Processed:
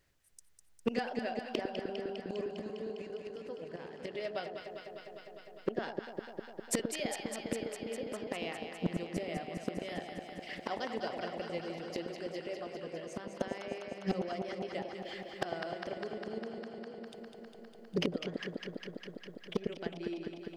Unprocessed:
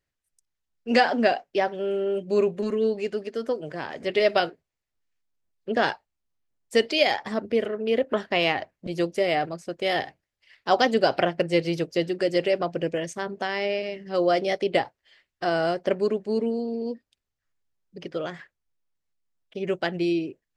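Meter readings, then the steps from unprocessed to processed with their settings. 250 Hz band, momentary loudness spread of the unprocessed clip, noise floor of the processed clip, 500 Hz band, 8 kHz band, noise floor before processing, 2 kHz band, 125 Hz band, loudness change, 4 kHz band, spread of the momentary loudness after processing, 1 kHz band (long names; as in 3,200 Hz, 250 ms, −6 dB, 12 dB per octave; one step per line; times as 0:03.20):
−10.5 dB, 11 LU, −56 dBFS, −14.0 dB, +1.0 dB, −84 dBFS, −14.5 dB, −7.5 dB, −14.0 dB, −13.5 dB, 10 LU, −15.0 dB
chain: gate with flip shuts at −25 dBFS, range −28 dB
delay that swaps between a low-pass and a high-pass 101 ms, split 870 Hz, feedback 89%, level −5.5 dB
gain into a clipping stage and back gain 31 dB
level +9.5 dB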